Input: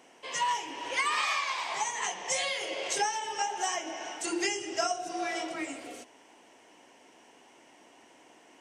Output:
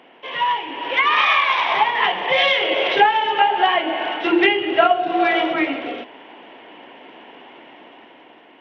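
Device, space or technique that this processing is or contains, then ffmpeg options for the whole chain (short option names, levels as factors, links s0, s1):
Bluetooth headset: -af "highpass=130,dynaudnorm=f=340:g=7:m=2.24,aresample=8000,aresample=44100,volume=2.82" -ar 32000 -c:a sbc -b:a 64k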